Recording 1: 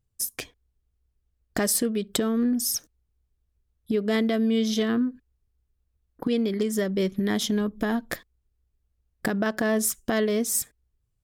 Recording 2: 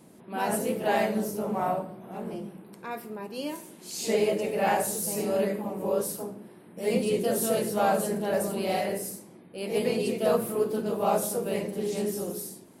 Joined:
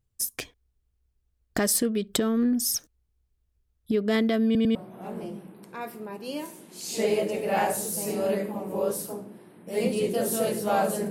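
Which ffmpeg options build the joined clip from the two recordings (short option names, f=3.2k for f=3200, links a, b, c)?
-filter_complex "[0:a]apad=whole_dur=11.1,atrim=end=11.1,asplit=3[a][b][c];[a]atrim=end=4.552[d];[b]atrim=start=4.448:end=4.552[e];[c]atrim=start=4.448:end=4.552[f];[1:a]atrim=start=1.848:end=8.2[g];[d][e]acrossfade=d=0.004:c1=hsin:c2=hsin[h];[h][f]acrossfade=d=0.004:c1=hsin:c2=hsin[i];[i][g]acrossfade=d=0.004:c1=hsin:c2=hsin"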